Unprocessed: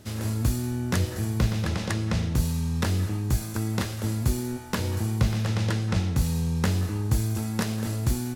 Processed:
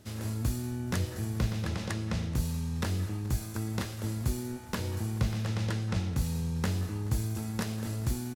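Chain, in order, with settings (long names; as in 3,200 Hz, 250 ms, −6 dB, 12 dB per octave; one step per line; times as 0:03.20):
repeating echo 428 ms, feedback 53%, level −21 dB
level −6 dB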